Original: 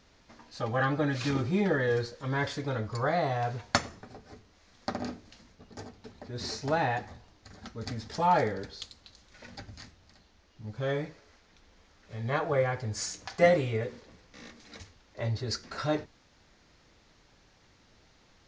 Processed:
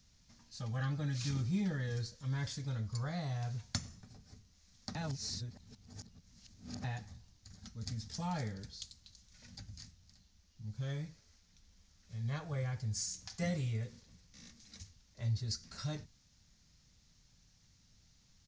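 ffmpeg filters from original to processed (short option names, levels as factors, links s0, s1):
-filter_complex "[0:a]asplit=3[s0][s1][s2];[s0]atrim=end=4.952[s3];[s1]atrim=start=4.948:end=6.842,asetpts=PTS-STARTPTS,areverse[s4];[s2]atrim=start=6.838[s5];[s3][s4]acrossfade=d=0.004:c1=hsin:c2=hsin[s6];[s6][s5]acrossfade=d=0.004:c1=hsin:c2=hsin,firequalizer=gain_entry='entry(170,0);entry(340,-17);entry(5700,3)':delay=0.05:min_phase=1,acrossover=split=320[s7][s8];[s8]acompressor=threshold=0.02:ratio=4[s9];[s7][s9]amix=inputs=2:normalize=0,volume=0.75"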